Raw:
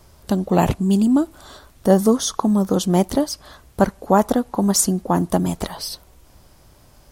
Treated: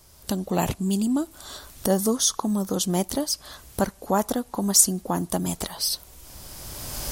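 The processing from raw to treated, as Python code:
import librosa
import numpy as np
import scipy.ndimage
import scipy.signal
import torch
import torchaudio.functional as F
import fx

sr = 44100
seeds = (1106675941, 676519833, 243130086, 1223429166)

y = fx.recorder_agc(x, sr, target_db=-10.5, rise_db_per_s=17.0, max_gain_db=30)
y = fx.high_shelf(y, sr, hz=3200.0, db=11.5)
y = y * 10.0 ** (-8.0 / 20.0)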